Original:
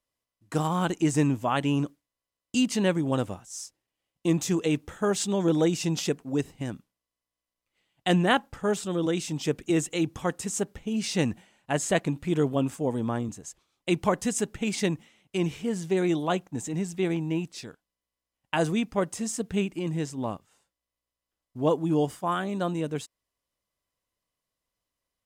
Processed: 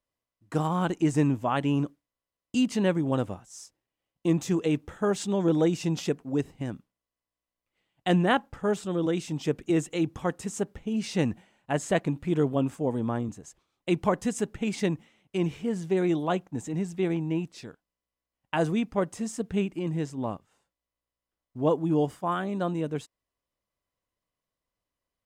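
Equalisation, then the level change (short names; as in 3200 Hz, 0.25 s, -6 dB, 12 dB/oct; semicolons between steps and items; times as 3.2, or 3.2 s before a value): high shelf 2900 Hz -8 dB; 0.0 dB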